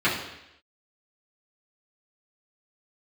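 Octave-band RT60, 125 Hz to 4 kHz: 0.75, 0.80, 0.85, 0.85, 0.90, 0.90 seconds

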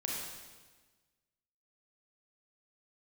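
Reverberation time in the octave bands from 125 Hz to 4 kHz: 1.6, 1.5, 1.4, 1.3, 1.3, 1.3 seconds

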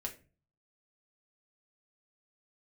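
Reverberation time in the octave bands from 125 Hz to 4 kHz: 0.70, 0.50, 0.40, 0.30, 0.30, 0.25 seconds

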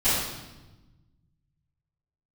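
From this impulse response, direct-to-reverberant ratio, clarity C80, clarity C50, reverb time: −18.5 dB, 2.0 dB, −1.5 dB, 1.1 s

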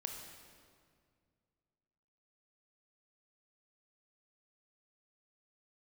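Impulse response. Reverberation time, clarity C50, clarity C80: 2.1 s, 4.0 dB, 5.5 dB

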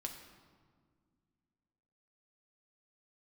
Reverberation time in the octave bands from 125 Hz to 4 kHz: 2.7, 2.8, 2.0, 1.7, 1.3, 1.1 seconds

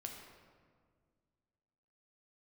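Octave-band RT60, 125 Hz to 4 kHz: 2.5, 2.4, 2.0, 1.7, 1.4, 1.0 seconds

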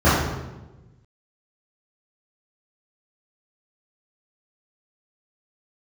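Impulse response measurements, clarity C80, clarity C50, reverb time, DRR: 3.0 dB, −0.5 dB, 1.1 s, −14.5 dB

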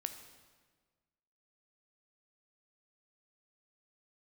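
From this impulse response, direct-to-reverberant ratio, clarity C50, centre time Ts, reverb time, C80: 7.5 dB, 9.0 dB, 18 ms, 1.5 s, 10.5 dB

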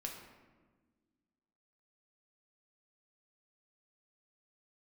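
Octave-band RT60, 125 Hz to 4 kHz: 1.9, 2.2, 1.6, 1.3, 1.1, 0.75 seconds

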